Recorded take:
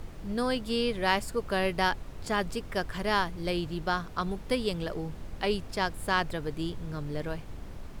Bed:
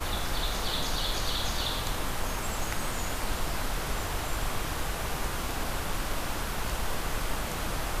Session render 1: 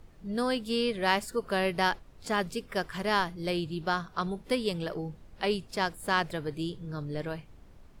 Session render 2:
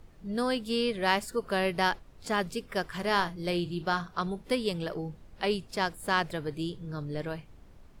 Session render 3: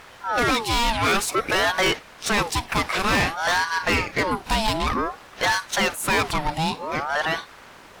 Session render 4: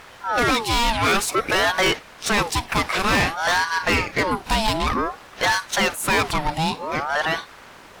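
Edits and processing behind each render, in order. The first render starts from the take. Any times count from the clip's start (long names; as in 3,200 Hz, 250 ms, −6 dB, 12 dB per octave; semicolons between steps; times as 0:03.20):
noise reduction from a noise print 12 dB
0:02.95–0:04.11: double-tracking delay 40 ms −13 dB
mid-hump overdrive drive 30 dB, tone 7,500 Hz, clips at −10 dBFS; ring modulator whose carrier an LFO sweeps 880 Hz, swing 50%, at 0.54 Hz
level +1.5 dB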